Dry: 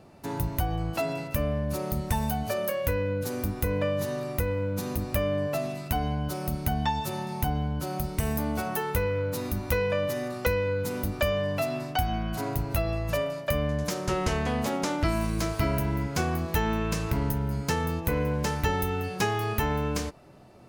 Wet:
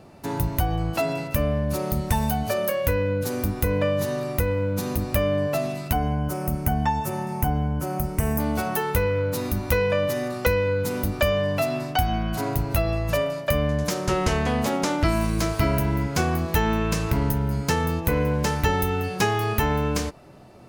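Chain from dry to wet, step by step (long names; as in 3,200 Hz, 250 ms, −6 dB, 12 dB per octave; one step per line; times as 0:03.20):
0:05.93–0:08.40: parametric band 3,900 Hz −14 dB 0.72 octaves
level +4.5 dB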